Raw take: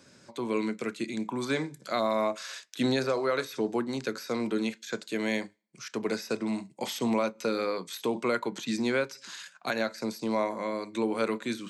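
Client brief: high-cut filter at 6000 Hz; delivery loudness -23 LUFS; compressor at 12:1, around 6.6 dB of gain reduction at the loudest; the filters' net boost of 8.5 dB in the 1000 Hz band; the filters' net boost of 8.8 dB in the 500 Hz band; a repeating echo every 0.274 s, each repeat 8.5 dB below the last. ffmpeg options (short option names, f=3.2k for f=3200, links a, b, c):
-af "lowpass=6k,equalizer=f=500:t=o:g=8.5,equalizer=f=1k:t=o:g=8,acompressor=threshold=-21dB:ratio=12,aecho=1:1:274|548|822|1096:0.376|0.143|0.0543|0.0206,volume=5dB"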